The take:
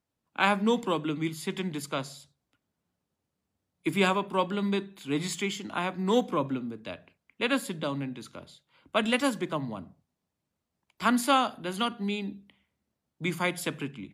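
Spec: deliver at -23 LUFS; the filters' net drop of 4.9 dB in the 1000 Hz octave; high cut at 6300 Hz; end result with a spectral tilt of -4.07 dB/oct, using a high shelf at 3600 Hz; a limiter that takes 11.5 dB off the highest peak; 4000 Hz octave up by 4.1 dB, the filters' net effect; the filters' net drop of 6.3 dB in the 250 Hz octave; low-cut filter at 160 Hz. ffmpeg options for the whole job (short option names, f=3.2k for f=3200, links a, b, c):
-af "highpass=160,lowpass=6.3k,equalizer=f=250:t=o:g=-6.5,equalizer=f=1k:t=o:g=-6,highshelf=f=3.6k:g=-4.5,equalizer=f=4k:t=o:g=9,volume=11.5dB,alimiter=limit=-9dB:level=0:latency=1"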